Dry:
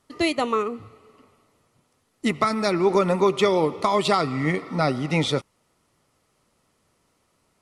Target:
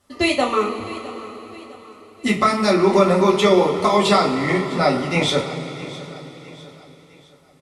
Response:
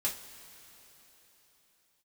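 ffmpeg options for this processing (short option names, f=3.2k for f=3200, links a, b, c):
-filter_complex "[0:a]aecho=1:1:658|1316|1974|2632:0.133|0.0573|0.0247|0.0106[a];[1:a]atrim=start_sample=2205[b];[a][b]afir=irnorm=-1:irlink=0,volume=1.5dB"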